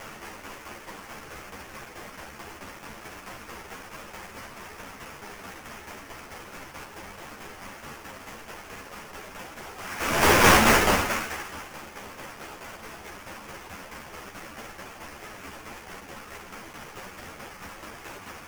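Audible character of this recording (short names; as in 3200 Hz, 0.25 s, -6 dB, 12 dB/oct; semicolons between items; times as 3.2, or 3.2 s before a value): a quantiser's noise floor 8-bit, dither triangular; tremolo saw down 4.6 Hz, depth 55%; aliases and images of a low sample rate 4000 Hz, jitter 20%; a shimmering, thickened sound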